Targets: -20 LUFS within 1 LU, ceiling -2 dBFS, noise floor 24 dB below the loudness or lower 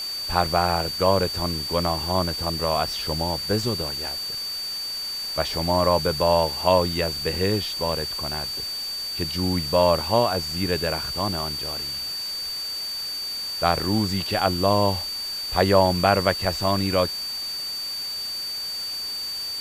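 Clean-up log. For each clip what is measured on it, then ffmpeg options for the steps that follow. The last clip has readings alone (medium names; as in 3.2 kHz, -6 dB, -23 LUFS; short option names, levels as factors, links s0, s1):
steady tone 4.6 kHz; tone level -28 dBFS; noise floor -31 dBFS; noise floor target -48 dBFS; loudness -23.5 LUFS; peak level -3.5 dBFS; loudness target -20.0 LUFS
-> -af "bandreject=f=4600:w=30"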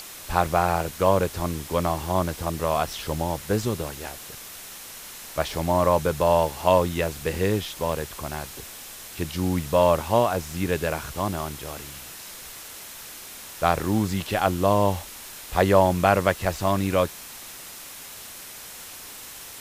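steady tone not found; noise floor -41 dBFS; noise floor target -48 dBFS
-> -af "afftdn=nr=7:nf=-41"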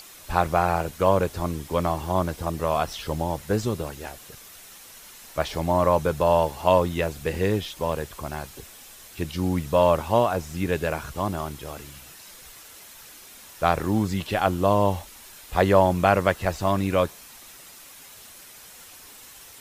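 noise floor -46 dBFS; noise floor target -49 dBFS
-> -af "afftdn=nr=6:nf=-46"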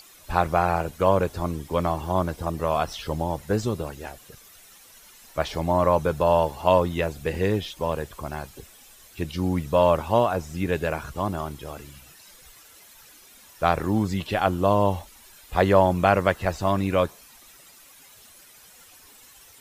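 noise floor -51 dBFS; loudness -24.5 LUFS; peak level -3.5 dBFS; loudness target -20.0 LUFS
-> -af "volume=1.68,alimiter=limit=0.794:level=0:latency=1"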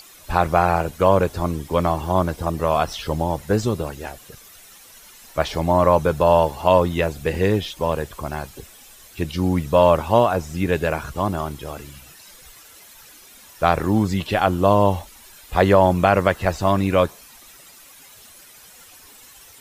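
loudness -20.0 LUFS; peak level -2.0 dBFS; noise floor -47 dBFS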